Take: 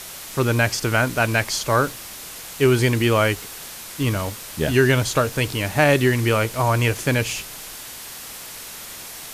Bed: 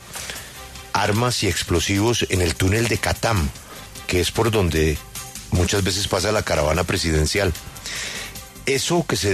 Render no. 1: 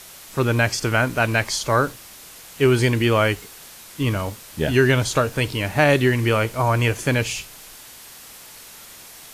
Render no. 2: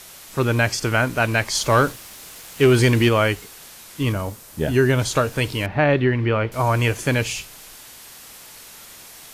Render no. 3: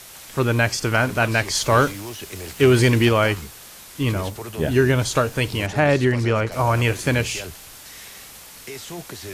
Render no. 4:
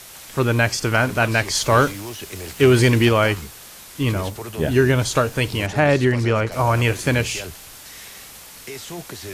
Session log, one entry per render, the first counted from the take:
noise print and reduce 6 dB
1.55–3.09 s: waveshaping leveller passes 1; 4.12–4.99 s: peaking EQ 3 kHz -6 dB 2 oct; 5.66–6.52 s: distance through air 330 m
add bed -15.5 dB
trim +1 dB

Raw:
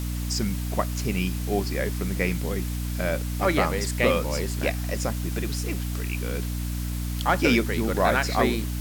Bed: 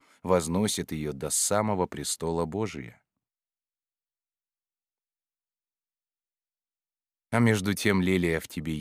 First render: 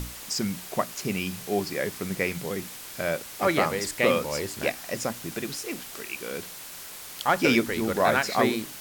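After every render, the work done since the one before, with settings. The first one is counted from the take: hum notches 60/120/180/240/300 Hz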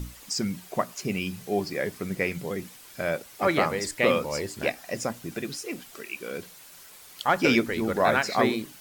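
noise reduction 9 dB, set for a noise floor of -41 dBFS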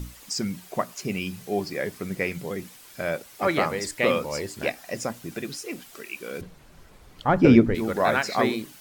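6.41–7.75 s: tilt EQ -4.5 dB/octave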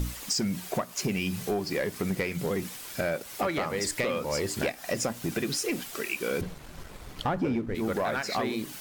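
compression 16:1, threshold -31 dBFS, peak gain reduction 22 dB; waveshaping leveller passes 2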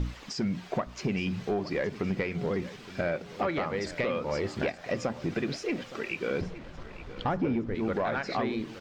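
distance through air 190 m; feedback delay 867 ms, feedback 42%, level -16 dB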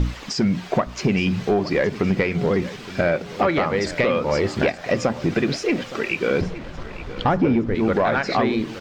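trim +10 dB

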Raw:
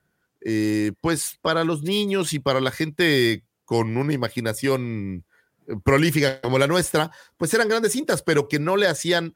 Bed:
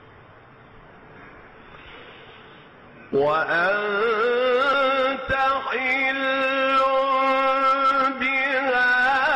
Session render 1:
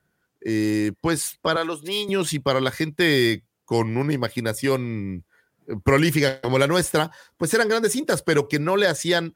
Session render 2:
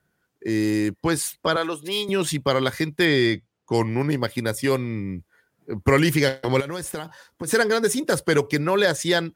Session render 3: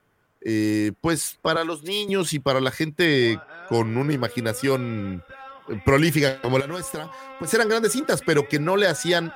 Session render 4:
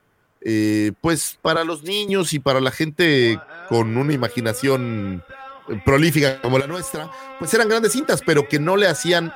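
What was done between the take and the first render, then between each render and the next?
1.56–2.09 s: Bessel high-pass 470 Hz
3.05–3.74 s: distance through air 73 m; 6.60–7.48 s: compression 10:1, threshold -26 dBFS
add bed -20.5 dB
trim +3.5 dB; peak limiter -3 dBFS, peak gain reduction 2 dB

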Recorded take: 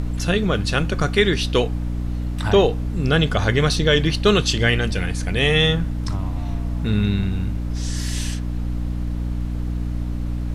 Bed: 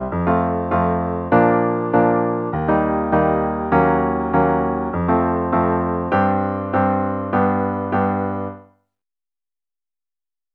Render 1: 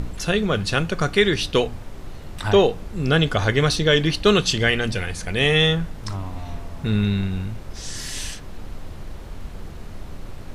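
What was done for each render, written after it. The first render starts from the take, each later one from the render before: de-hum 60 Hz, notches 5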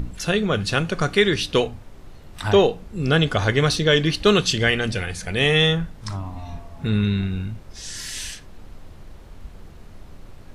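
noise print and reduce 7 dB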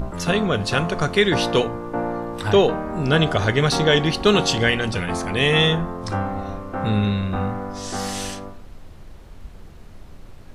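add bed -10 dB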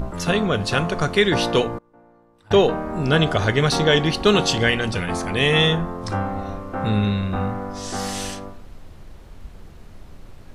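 1.78–2.51 s: inverted gate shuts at -28 dBFS, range -27 dB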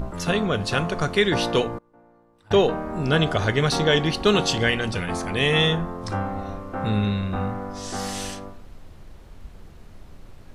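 trim -2.5 dB

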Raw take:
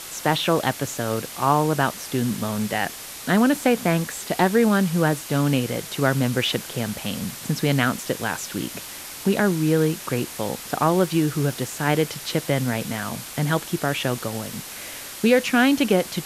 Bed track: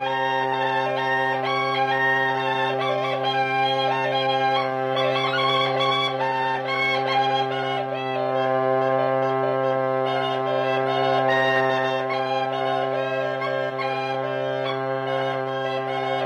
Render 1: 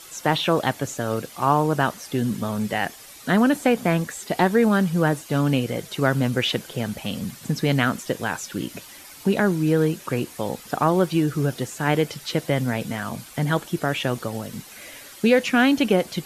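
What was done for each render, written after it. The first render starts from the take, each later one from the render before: noise reduction 10 dB, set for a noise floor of -37 dBFS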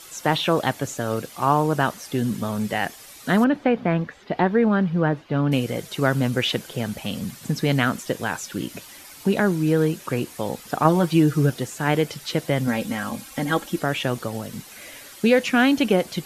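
3.44–5.52 s: distance through air 310 m; 10.84–11.50 s: comb 6.5 ms; 12.67–13.82 s: comb 3.7 ms, depth 68%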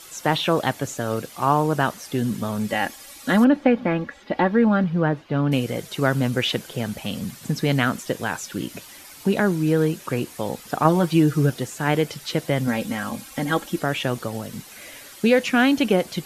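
2.68–4.84 s: comb 3.6 ms, depth 59%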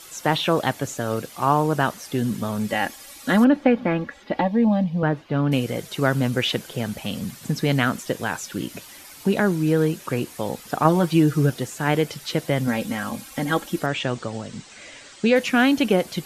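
4.41–5.03 s: static phaser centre 380 Hz, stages 6; 13.86–15.36 s: elliptic low-pass 8.1 kHz, stop band 50 dB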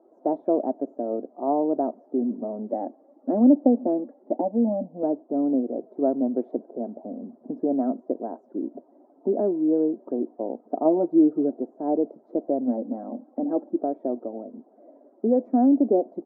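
elliptic band-pass 240–720 Hz, stop band 60 dB; comb 3.1 ms, depth 32%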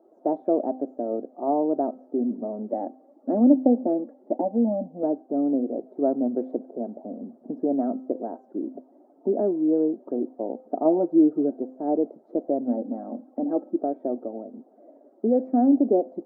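band-stop 1 kHz, Q 13; de-hum 258.9 Hz, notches 27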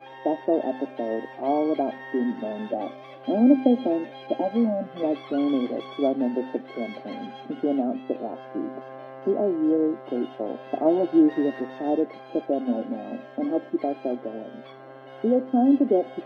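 add bed track -19.5 dB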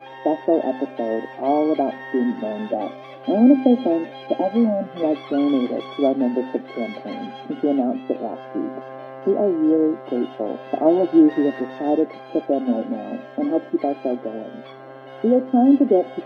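trim +4.5 dB; peak limiter -3 dBFS, peak gain reduction 2 dB

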